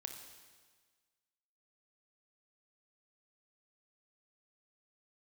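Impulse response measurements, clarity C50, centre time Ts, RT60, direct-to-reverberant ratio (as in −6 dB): 6.0 dB, 35 ms, 1.5 s, 4.5 dB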